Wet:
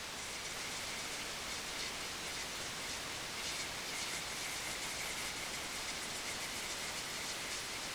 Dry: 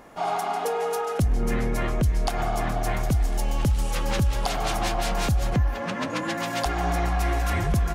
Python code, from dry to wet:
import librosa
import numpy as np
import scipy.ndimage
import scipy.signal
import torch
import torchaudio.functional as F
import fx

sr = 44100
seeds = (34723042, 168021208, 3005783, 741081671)

y = scipy.signal.sosfilt(scipy.signal.butter(12, 2500.0, 'highpass', fs=sr, output='sos'), x)
y = fx.spec_gate(y, sr, threshold_db=-20, keep='weak')
y = y + 0.99 * np.pad(y, (int(1.4 * sr / 1000.0), 0))[:len(y)]
y = fx.fold_sine(y, sr, drive_db=3, ceiling_db=-42.5)
y = fx.quant_dither(y, sr, seeds[0], bits=8, dither='triangular')
y = fx.air_absorb(y, sr, metres=84.0)
y = y + 10.0 ** (-4.5 / 20.0) * np.pad(y, (int(543 * sr / 1000.0), 0))[:len(y)]
y = y * librosa.db_to_amplitude(10.0)